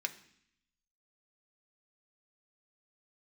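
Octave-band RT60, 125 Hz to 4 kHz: 1.0, 0.95, 0.65, 0.70, 0.80, 0.80 s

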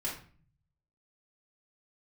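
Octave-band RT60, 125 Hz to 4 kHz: 1.1, 0.75, 0.45, 0.40, 0.40, 0.35 s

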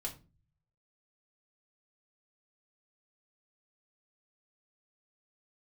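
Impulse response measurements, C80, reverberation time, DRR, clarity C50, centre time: 19.0 dB, 0.35 s, -1.5 dB, 13.0 dB, 12 ms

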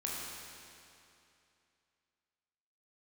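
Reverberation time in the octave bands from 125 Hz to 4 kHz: 2.7, 2.7, 2.7, 2.7, 2.6, 2.5 s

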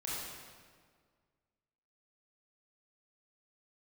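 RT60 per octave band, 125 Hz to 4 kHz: 2.0, 2.0, 1.9, 1.7, 1.5, 1.3 s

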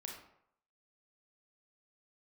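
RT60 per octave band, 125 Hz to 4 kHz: 0.65, 0.60, 0.70, 0.75, 0.60, 0.45 s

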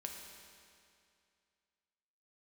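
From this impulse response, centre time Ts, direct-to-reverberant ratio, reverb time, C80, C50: 76 ms, 1.0 dB, 2.4 s, 4.0 dB, 3.0 dB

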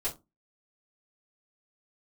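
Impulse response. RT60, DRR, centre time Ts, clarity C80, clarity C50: 0.25 s, -9.5 dB, 16 ms, 22.0 dB, 14.0 dB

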